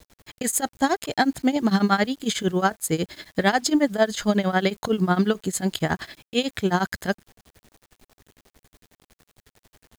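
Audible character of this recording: tremolo triangle 11 Hz, depth 95%; a quantiser's noise floor 10-bit, dither none

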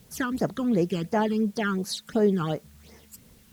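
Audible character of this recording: phasing stages 12, 2.8 Hz, lowest notch 620–3500 Hz; a quantiser's noise floor 10-bit, dither triangular; Vorbis

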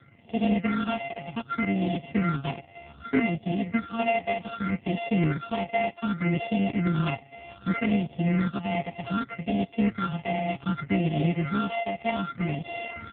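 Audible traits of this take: a buzz of ramps at a fixed pitch in blocks of 64 samples; phasing stages 6, 0.65 Hz, lowest notch 350–1400 Hz; AMR-NB

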